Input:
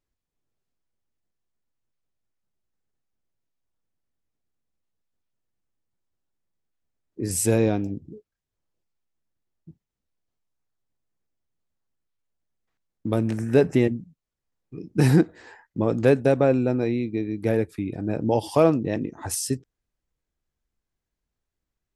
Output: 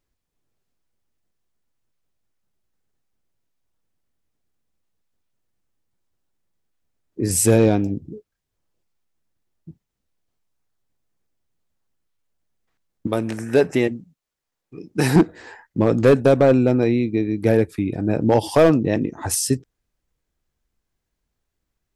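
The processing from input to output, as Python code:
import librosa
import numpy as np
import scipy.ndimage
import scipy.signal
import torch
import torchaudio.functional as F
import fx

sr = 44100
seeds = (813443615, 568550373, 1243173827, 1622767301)

y = fx.low_shelf(x, sr, hz=280.0, db=-12.0, at=(13.07, 15.16))
y = np.clip(y, -10.0 ** (-13.0 / 20.0), 10.0 ** (-13.0 / 20.0))
y = y * 10.0 ** (6.0 / 20.0)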